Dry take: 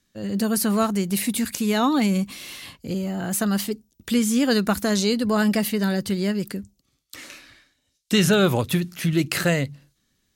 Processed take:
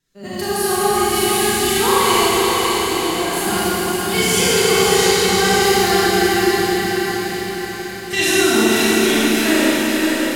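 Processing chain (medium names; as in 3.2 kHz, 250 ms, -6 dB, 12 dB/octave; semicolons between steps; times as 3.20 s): vibrato 1.3 Hz 25 cents; formant-preserving pitch shift +10.5 st; on a send: echo that smears into a reverb 554 ms, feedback 55%, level -4 dB; on the sum: Schroeder reverb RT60 3.8 s, combs from 28 ms, DRR -10 dB; trim -5 dB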